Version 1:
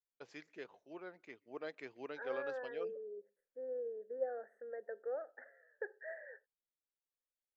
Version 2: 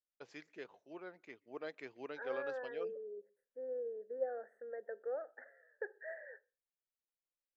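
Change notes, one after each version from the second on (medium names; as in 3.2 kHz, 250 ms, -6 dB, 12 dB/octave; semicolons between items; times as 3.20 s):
second voice: send on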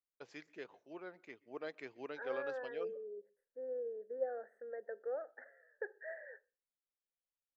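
first voice: send +8.0 dB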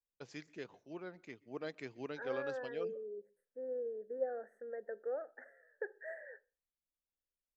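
master: add tone controls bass +13 dB, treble +8 dB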